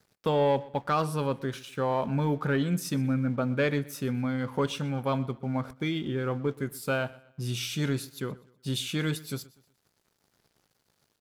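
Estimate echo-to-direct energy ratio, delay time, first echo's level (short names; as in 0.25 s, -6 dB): -20.5 dB, 0.123 s, -21.0 dB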